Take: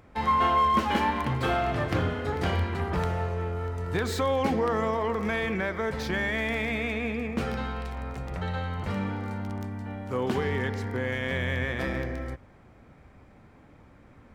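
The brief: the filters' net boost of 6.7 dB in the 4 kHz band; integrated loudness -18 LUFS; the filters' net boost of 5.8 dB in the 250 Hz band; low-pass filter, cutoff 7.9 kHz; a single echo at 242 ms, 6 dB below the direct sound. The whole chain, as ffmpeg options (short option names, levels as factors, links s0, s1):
-af "lowpass=7900,equalizer=f=250:t=o:g=7,equalizer=f=4000:t=o:g=9,aecho=1:1:242:0.501,volume=2.24"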